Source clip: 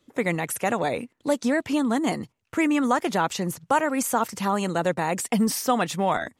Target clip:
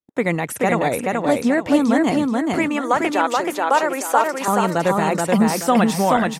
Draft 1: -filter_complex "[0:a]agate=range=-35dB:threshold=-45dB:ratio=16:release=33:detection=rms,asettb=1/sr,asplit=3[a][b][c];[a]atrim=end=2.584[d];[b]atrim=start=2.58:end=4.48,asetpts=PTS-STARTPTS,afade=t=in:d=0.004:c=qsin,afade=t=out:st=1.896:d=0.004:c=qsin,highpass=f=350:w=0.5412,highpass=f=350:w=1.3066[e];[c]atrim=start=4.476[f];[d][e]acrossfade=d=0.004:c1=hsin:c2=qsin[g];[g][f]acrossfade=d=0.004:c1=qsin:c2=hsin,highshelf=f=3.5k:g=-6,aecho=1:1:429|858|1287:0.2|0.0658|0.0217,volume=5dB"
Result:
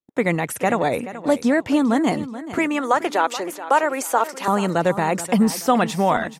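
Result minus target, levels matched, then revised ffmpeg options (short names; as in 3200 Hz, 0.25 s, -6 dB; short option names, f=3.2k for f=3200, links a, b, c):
echo-to-direct -11.5 dB
-filter_complex "[0:a]agate=range=-35dB:threshold=-45dB:ratio=16:release=33:detection=rms,asettb=1/sr,asplit=3[a][b][c];[a]atrim=end=2.584[d];[b]atrim=start=2.58:end=4.48,asetpts=PTS-STARTPTS,afade=t=in:d=0.004:c=qsin,afade=t=out:st=1.896:d=0.004:c=qsin,highpass=f=350:w=0.5412,highpass=f=350:w=1.3066[e];[c]atrim=start=4.476[f];[d][e]acrossfade=d=0.004:c1=hsin:c2=qsin[g];[g][f]acrossfade=d=0.004:c1=qsin:c2=hsin,highshelf=f=3.5k:g=-6,aecho=1:1:429|858|1287|1716:0.75|0.247|0.0817|0.0269,volume=5dB"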